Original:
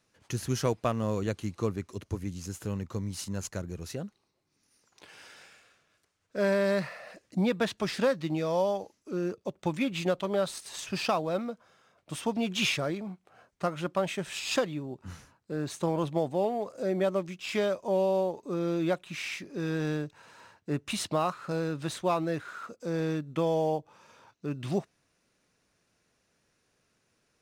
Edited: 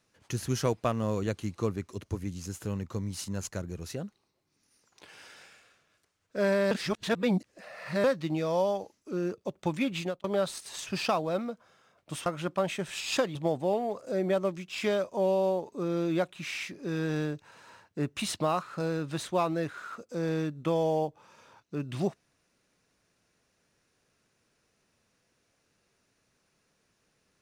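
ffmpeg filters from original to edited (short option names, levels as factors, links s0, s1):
-filter_complex "[0:a]asplit=6[s0][s1][s2][s3][s4][s5];[s0]atrim=end=6.712[s6];[s1]atrim=start=6.708:end=8.042,asetpts=PTS-STARTPTS,areverse[s7];[s2]atrim=start=8.038:end=10.24,asetpts=PTS-STARTPTS,afade=t=out:st=1.922:d=0.28[s8];[s3]atrim=start=10.24:end=12.262,asetpts=PTS-STARTPTS,afade=t=in:d=0.004:c=hsin[s9];[s4]atrim=start=13.648:end=14.742[s10];[s5]atrim=start=16.058[s11];[s6][s7]acrossfade=d=0.004:c1=hsin:c2=hsin[s12];[s8][s9]concat=n=2:v=0:a=1[s13];[s12][s13]acrossfade=d=0.004:c1=hsin:c2=hsin[s14];[s14][s10]acrossfade=d=0.004:c1=hsin:c2=hsin[s15];[s15][s11]acrossfade=d=0.004:c1=hsin:c2=hsin"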